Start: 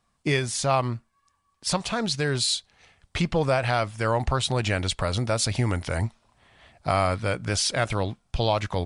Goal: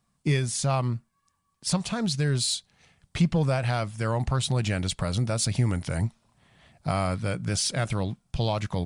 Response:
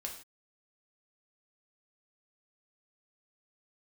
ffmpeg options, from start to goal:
-filter_complex "[0:a]equalizer=frequency=160:width_type=o:width=1.3:gain=11,asplit=2[link_01][link_02];[link_02]asoftclip=type=tanh:threshold=-17dB,volume=-9dB[link_03];[link_01][link_03]amix=inputs=2:normalize=0,highshelf=frequency=6900:gain=9,volume=-8dB"

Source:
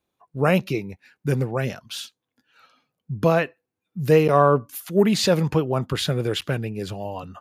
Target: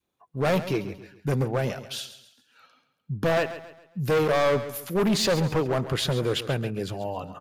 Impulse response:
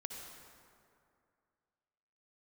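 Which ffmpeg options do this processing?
-filter_complex "[0:a]adynamicequalizer=threshold=0.0316:dfrequency=620:dqfactor=1.4:tfrequency=620:tqfactor=1.4:attack=5:release=100:ratio=0.375:range=2.5:mode=boostabove:tftype=bell,asoftclip=type=hard:threshold=-18dB,asplit=2[link_01][link_02];[link_02]aecho=0:1:136|272|408|544:0.224|0.0851|0.0323|0.0123[link_03];[link_01][link_03]amix=inputs=2:normalize=0,volume=-1.5dB"

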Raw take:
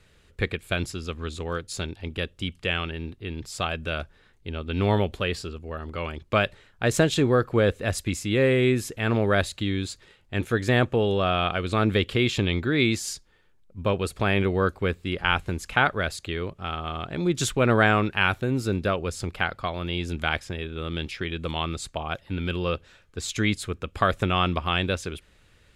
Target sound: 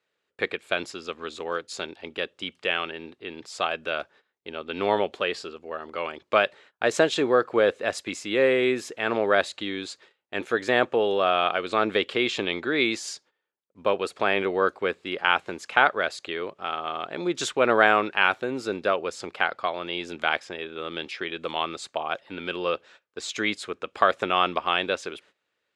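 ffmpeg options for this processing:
ffmpeg -i in.wav -af "agate=range=-17dB:threshold=-50dB:ratio=16:detection=peak,highpass=360,lowpass=6700,equalizer=frequency=740:width=0.57:gain=3.5" out.wav

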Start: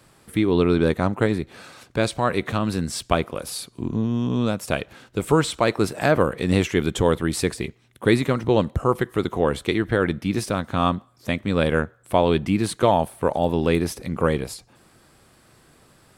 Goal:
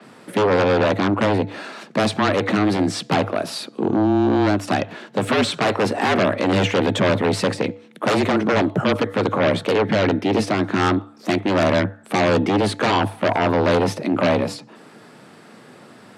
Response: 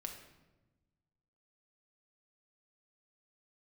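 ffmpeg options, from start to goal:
-filter_complex "[0:a]asplit=2[link_01][link_02];[link_02]aeval=exprs='0.75*sin(PI/2*7.94*val(0)/0.75)':channel_layout=same,volume=-3.5dB[link_03];[link_01][link_03]amix=inputs=2:normalize=0,aemphasis=mode=reproduction:type=50fm,bandreject=frequency=191.9:width_type=h:width=4,bandreject=frequency=383.8:width_type=h:width=4,bandreject=frequency=575.7:width_type=h:width=4,bandreject=frequency=767.6:width_type=h:width=4,afreqshift=100,adynamicequalizer=threshold=0.0224:dfrequency=6300:dqfactor=0.7:tfrequency=6300:tqfactor=0.7:attack=5:release=100:ratio=0.375:range=2.5:mode=cutabove:tftype=highshelf,volume=-9dB"

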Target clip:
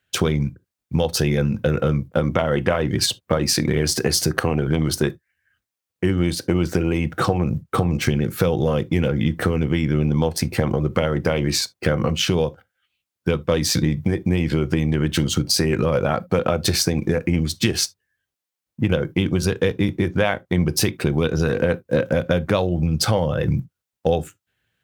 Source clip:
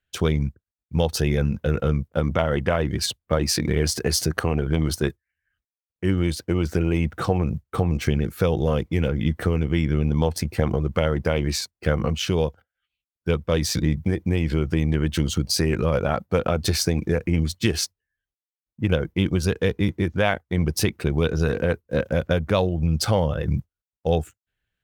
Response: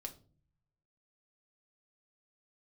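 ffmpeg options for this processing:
-filter_complex "[0:a]highpass=82,acompressor=threshold=-27dB:ratio=3,asplit=2[link_01][link_02];[1:a]atrim=start_sample=2205,atrim=end_sample=3528[link_03];[link_02][link_03]afir=irnorm=-1:irlink=0,volume=-3dB[link_04];[link_01][link_04]amix=inputs=2:normalize=0,volume=6.5dB"

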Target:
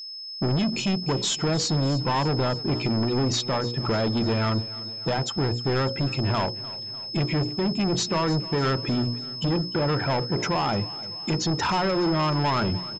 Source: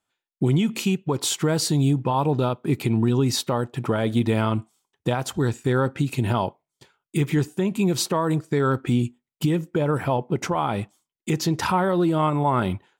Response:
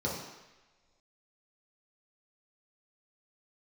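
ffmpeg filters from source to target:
-filter_complex "[0:a]bandreject=frequency=60:width_type=h:width=6,bandreject=frequency=120:width_type=h:width=6,bandreject=frequency=180:width_type=h:width=6,bandreject=frequency=240:width_type=h:width=6,bandreject=frequency=300:width_type=h:width=6,bandreject=frequency=360:width_type=h:width=6,bandreject=frequency=420:width_type=h:width=6,bandreject=frequency=480:width_type=h:width=6,bandreject=frequency=540:width_type=h:width=6,afftdn=noise_reduction=12:noise_floor=-33,bandreject=frequency=5100:width=5.3,aresample=16000,asoftclip=type=tanh:threshold=-26dB,aresample=44100,aeval=exprs='val(0)+0.01*sin(2*PI*5200*n/s)':channel_layout=same,asplit=2[link_01][link_02];[link_02]aecho=0:1:300|600|900|1200|1500:0.126|0.0718|0.0409|0.0233|0.0133[link_03];[link_01][link_03]amix=inputs=2:normalize=0,volume=5dB"

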